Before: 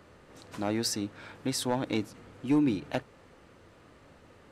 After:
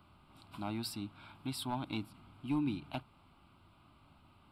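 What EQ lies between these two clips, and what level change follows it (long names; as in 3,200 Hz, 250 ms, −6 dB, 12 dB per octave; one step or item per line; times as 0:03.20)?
phaser with its sweep stopped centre 1,800 Hz, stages 6
−4.0 dB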